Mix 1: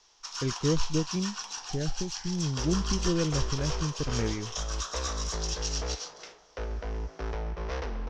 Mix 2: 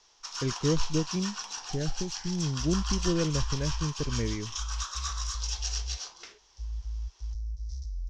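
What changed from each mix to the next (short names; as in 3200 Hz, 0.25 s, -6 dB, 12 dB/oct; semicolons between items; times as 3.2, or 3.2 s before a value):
second sound: add inverse Chebyshev band-stop 150–2900 Hz, stop band 40 dB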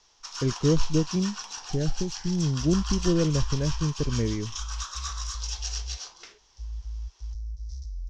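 speech: add tilt shelf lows +5 dB, about 1400 Hz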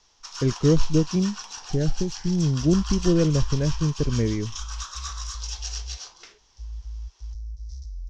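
speech +3.5 dB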